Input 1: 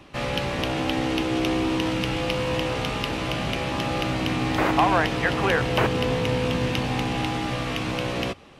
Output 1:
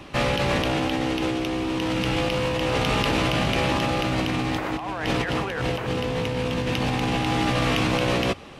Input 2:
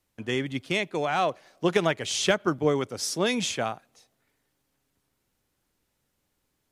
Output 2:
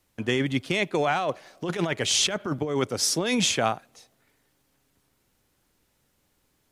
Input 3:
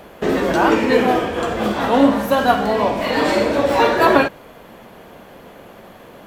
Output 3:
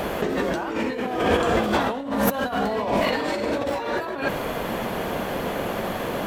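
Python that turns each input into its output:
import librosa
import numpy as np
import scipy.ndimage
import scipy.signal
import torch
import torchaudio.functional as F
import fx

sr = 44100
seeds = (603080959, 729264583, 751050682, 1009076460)

y = fx.over_compress(x, sr, threshold_db=-28.0, ratio=-1.0)
y = F.gain(torch.from_numpy(y), 3.5).numpy()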